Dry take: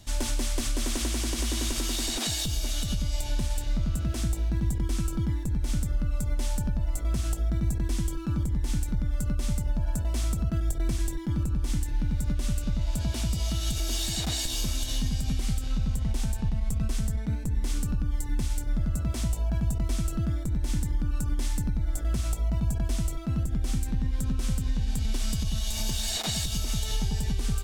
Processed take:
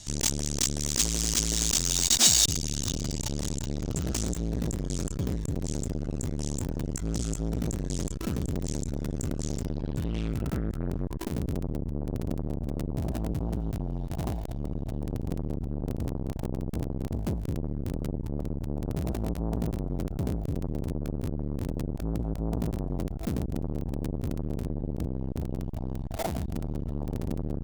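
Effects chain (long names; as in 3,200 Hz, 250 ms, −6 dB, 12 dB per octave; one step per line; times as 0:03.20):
low-pass filter sweep 6,900 Hz → 670 Hz, 0:09.41–0:11.39
in parallel at −6.5 dB: comparator with hysteresis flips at −36 dBFS
on the sum: high-shelf EQ 4,500 Hz +10 dB
saturating transformer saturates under 850 Hz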